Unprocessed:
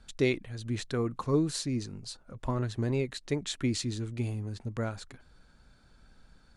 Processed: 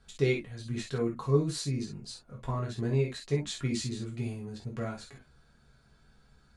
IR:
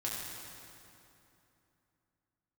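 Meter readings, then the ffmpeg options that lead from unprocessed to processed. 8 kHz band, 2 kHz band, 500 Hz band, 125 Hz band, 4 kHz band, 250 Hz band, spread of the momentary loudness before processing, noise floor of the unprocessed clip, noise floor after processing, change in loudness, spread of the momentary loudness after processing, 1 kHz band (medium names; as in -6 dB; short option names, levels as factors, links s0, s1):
-1.5 dB, -1.0 dB, +1.0 dB, +1.0 dB, -1.5 dB, -2.0 dB, 11 LU, -61 dBFS, -63 dBFS, 0.0 dB, 12 LU, -1.5 dB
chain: -filter_complex "[1:a]atrim=start_sample=2205,atrim=end_sample=3969,asetrate=57330,aresample=44100[s0];[0:a][s0]afir=irnorm=-1:irlink=0"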